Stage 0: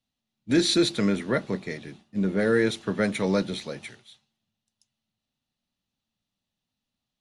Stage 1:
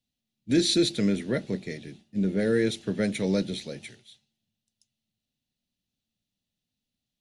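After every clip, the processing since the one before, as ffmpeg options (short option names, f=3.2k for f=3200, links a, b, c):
-af "equalizer=f=1.1k:w=1.4:g=-15"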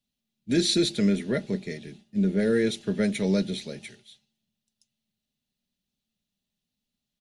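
-af "aecho=1:1:4.9:0.36"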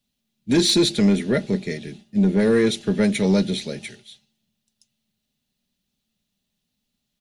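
-af "asoftclip=type=tanh:threshold=-16dB,volume=7dB"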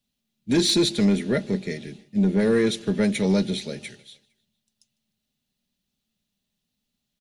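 -af "aecho=1:1:152|304|456:0.0631|0.0334|0.0177,volume=-2.5dB"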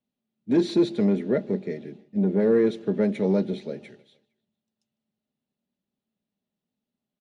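-af "bandpass=f=440:t=q:w=0.74:csg=0,volume=1.5dB"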